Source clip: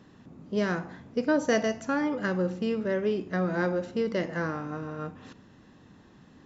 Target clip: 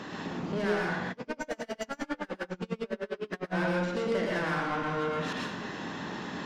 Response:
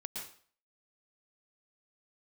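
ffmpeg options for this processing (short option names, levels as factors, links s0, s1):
-filter_complex "[0:a]acompressor=threshold=0.00794:ratio=4,asplit=2[s0][s1];[s1]highpass=f=720:p=1,volume=14.1,asoftclip=type=tanh:threshold=0.0316[s2];[s0][s2]amix=inputs=2:normalize=0,lowpass=f=3800:p=1,volume=0.501[s3];[1:a]atrim=start_sample=2205[s4];[s3][s4]afir=irnorm=-1:irlink=0,asplit=3[s5][s6][s7];[s5]afade=t=out:st=1.09:d=0.02[s8];[s6]aeval=exprs='val(0)*pow(10,-33*(0.5-0.5*cos(2*PI*9.9*n/s))/20)':c=same,afade=t=in:st=1.09:d=0.02,afade=t=out:st=3.53:d=0.02[s9];[s7]afade=t=in:st=3.53:d=0.02[s10];[s8][s9][s10]amix=inputs=3:normalize=0,volume=2.66"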